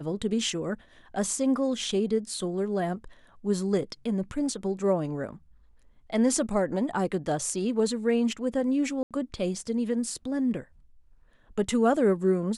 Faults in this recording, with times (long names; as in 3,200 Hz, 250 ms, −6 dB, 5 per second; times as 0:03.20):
0:09.03–0:09.11: drop-out 77 ms